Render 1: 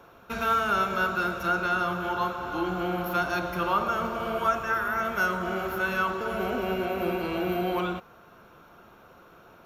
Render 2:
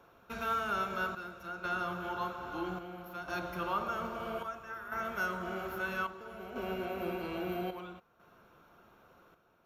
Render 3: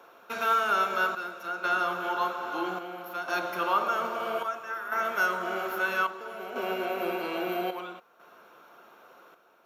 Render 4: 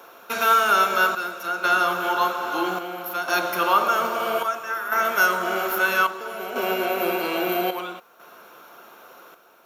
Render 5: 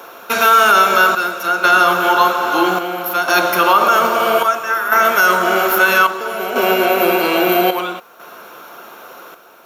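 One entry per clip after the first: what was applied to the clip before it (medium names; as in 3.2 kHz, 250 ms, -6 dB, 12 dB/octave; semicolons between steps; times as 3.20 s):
square tremolo 0.61 Hz, depth 60%, duty 70%; trim -8.5 dB
high-pass 380 Hz 12 dB/octave; trim +8.5 dB
treble shelf 5.2 kHz +10 dB; trim +6.5 dB
loudness maximiser +11 dB; trim -1 dB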